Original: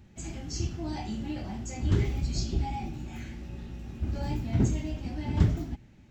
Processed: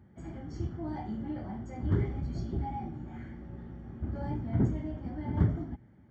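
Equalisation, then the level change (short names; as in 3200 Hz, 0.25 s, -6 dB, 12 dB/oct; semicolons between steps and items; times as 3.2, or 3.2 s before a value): polynomial smoothing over 41 samples; HPF 74 Hz; -1.5 dB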